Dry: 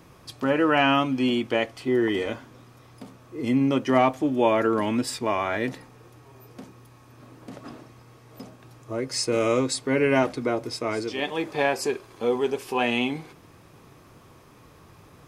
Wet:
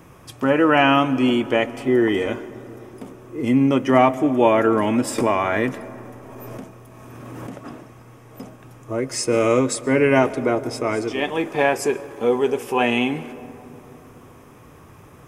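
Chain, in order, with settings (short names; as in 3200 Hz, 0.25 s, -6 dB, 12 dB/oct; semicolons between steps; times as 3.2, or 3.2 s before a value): bell 4300 Hz -12 dB 0.48 oct; digital reverb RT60 3.7 s, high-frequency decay 0.25×, pre-delay 90 ms, DRR 16.5 dB; 5.18–7.56 backwards sustainer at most 21 dB/s; gain +5 dB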